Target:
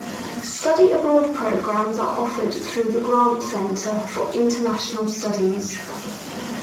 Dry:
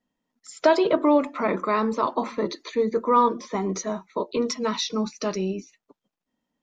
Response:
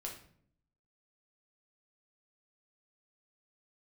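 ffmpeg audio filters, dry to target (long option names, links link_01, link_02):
-filter_complex "[0:a]aeval=exprs='val(0)+0.5*0.0501*sgn(val(0))':channel_layout=same,adynamicequalizer=threshold=0.01:dfrequency=3400:dqfactor=1.2:tfrequency=3400:tqfactor=1.2:attack=5:release=100:ratio=0.375:range=2:mode=cutabove:tftype=bell,asplit=3[link_01][link_02][link_03];[link_01]afade=type=out:start_time=2.86:duration=0.02[link_04];[link_02]bandreject=frequency=5500:width=25,afade=type=in:start_time=2.86:duration=0.02,afade=type=out:start_time=3.61:duration=0.02[link_05];[link_03]afade=type=in:start_time=3.61:duration=0.02[link_06];[link_04][link_05][link_06]amix=inputs=3:normalize=0,asplit=2[link_07][link_08];[link_08]acompressor=threshold=-32dB:ratio=10,volume=1dB[link_09];[link_07][link_09]amix=inputs=2:normalize=0[link_10];[1:a]atrim=start_sample=2205[link_11];[link_10][link_11]afir=irnorm=-1:irlink=0" -ar 32000 -c:a libspeex -b:a 15k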